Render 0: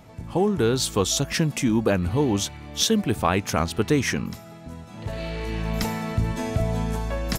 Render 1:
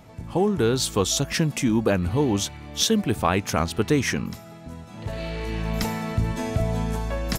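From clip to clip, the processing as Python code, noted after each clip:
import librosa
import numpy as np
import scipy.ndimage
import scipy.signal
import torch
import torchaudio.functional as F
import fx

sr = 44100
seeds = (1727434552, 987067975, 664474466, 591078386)

y = x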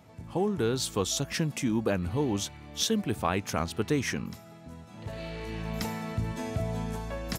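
y = scipy.signal.sosfilt(scipy.signal.butter(2, 61.0, 'highpass', fs=sr, output='sos'), x)
y = F.gain(torch.from_numpy(y), -6.5).numpy()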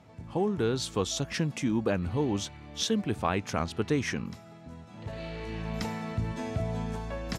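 y = fx.air_absorb(x, sr, metres=51.0)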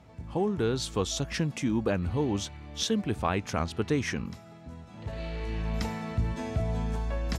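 y = fx.peak_eq(x, sr, hz=61.0, db=12.5, octaves=0.48)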